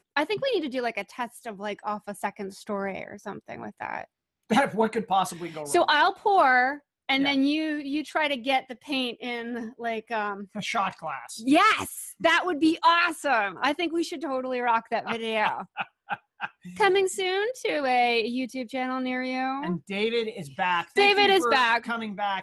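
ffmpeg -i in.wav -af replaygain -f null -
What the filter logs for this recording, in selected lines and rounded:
track_gain = +4.2 dB
track_peak = 0.248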